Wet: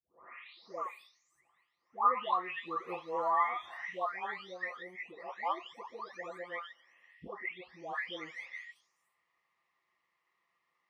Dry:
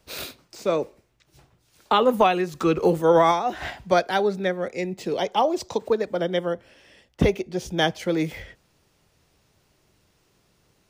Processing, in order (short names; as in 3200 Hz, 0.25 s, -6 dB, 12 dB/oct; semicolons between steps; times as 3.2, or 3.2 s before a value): spectral delay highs late, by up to 0.762 s; double band-pass 1500 Hz, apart 0.71 oct